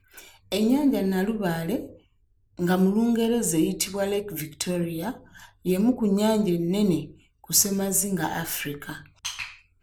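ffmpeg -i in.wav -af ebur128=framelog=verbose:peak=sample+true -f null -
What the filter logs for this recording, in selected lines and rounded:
Integrated loudness:
  I:         -24.8 LUFS
  Threshold: -35.4 LUFS
Loudness range:
  LRA:         2.1 LU
  Threshold: -45.1 LUFS
  LRA low:   -25.9 LUFS
  LRA high:  -23.8 LUFS
Sample peak:
  Peak:       -5.4 dBFS
True peak:
  Peak:       -4.5 dBFS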